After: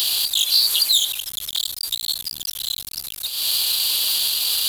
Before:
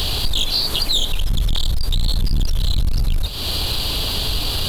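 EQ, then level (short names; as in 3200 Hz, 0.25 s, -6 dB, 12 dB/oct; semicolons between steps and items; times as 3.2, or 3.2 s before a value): differentiator; +7.5 dB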